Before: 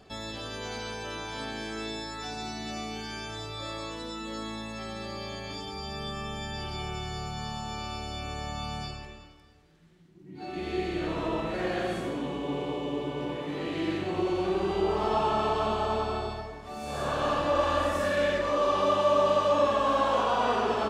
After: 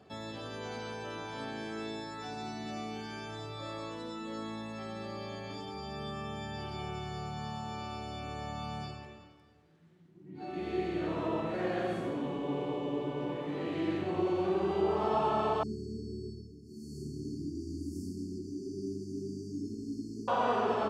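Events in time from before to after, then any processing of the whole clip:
15.63–20.28 brick-wall FIR band-stop 420–4300 Hz
whole clip: HPF 83 Hz 24 dB/oct; high shelf 2200 Hz -8.5 dB; gain -2 dB

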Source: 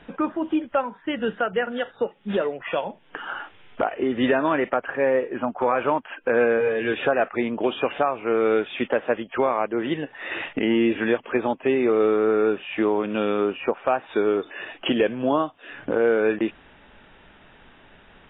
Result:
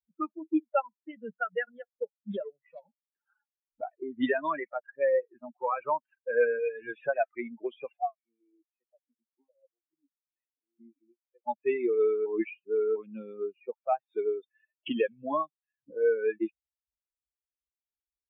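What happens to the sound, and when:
2.49–3.26 core saturation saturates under 1000 Hz
7.97–11.47 vowel sequencer 4.6 Hz
12.26–12.96 reverse
whole clip: per-bin expansion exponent 3; low-pass opened by the level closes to 380 Hz, open at -21.5 dBFS; HPF 250 Hz 12 dB/oct

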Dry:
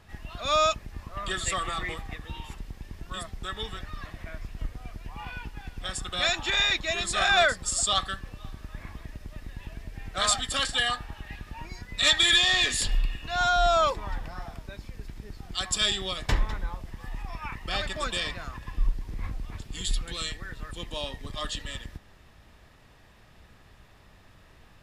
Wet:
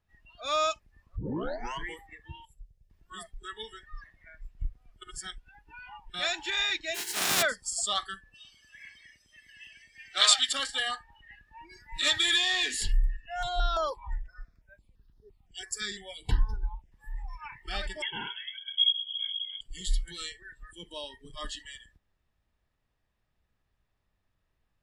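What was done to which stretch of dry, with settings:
1.16 tape start 0.72 s
2.45–2.9 EQ curve 160 Hz 0 dB, 250 Hz -24 dB, 430 Hz -5 dB, 620 Hz -5 dB, 950 Hz -22 dB, 6800 Hz -5 dB
5.02–6.14 reverse
6.94–7.41 spectral contrast lowered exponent 0.2
8.34–10.53 weighting filter D
11.35–11.97 echo throw 0.35 s, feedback 25%, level -1 dB
12.92–16.92 step phaser 5.9 Hz 850–7900 Hz
18.02–19.61 inverted band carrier 3300 Hz
whole clip: low shelf 66 Hz +6.5 dB; spectral noise reduction 21 dB; gain -4.5 dB

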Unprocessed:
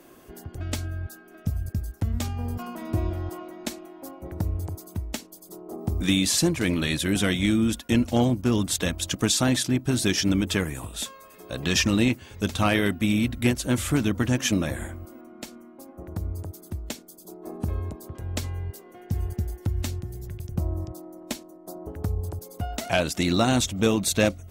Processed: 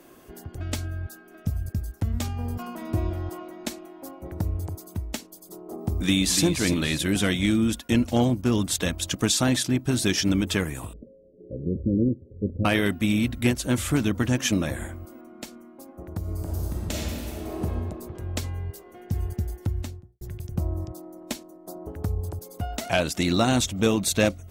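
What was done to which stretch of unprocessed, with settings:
5.91–6.44 echo throw 0.29 s, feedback 35%, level -8 dB
10.93–12.65 Chebyshev low-pass 550 Hz, order 6
16.19–17.62 reverb throw, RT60 3 s, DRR -6.5 dB
19.61–20.21 studio fade out

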